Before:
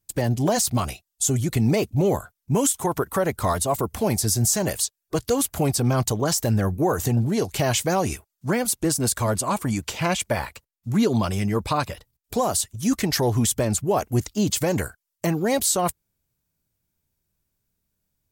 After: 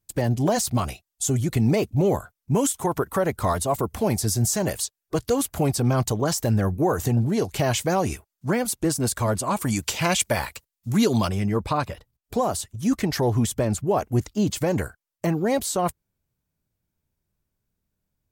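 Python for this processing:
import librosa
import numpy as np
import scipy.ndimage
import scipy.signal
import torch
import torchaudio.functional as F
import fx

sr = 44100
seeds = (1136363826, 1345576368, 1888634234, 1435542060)

y = fx.high_shelf(x, sr, hz=2800.0, db=fx.steps((0.0, -4.0), (9.57, 6.0), (11.27, -8.0)))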